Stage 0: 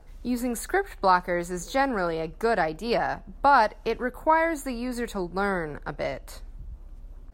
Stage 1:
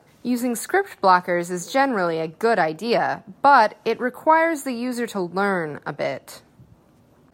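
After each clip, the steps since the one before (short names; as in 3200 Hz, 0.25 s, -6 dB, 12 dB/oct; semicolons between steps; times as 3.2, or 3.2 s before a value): HPF 120 Hz 24 dB/oct; gain +5 dB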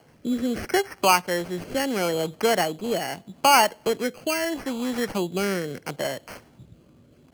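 in parallel at -1 dB: compressor, threshold -27 dBFS, peak gain reduction 17 dB; on the sum: sample-and-hold 12×; rotary speaker horn 0.75 Hz; gain -3.5 dB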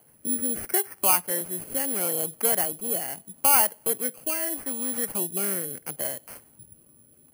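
careless resampling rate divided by 4×, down filtered, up zero stuff; gain -8 dB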